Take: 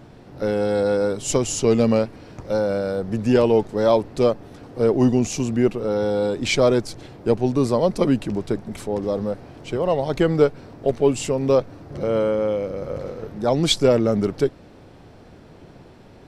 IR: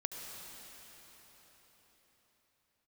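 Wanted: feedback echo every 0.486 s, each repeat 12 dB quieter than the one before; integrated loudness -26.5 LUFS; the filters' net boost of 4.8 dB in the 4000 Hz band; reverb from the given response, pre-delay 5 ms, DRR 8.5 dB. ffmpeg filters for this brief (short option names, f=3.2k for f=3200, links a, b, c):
-filter_complex "[0:a]equalizer=f=4k:t=o:g=6,aecho=1:1:486|972|1458:0.251|0.0628|0.0157,asplit=2[a][b];[1:a]atrim=start_sample=2205,adelay=5[c];[b][c]afir=irnorm=-1:irlink=0,volume=-9dB[d];[a][d]amix=inputs=2:normalize=0,volume=-6dB"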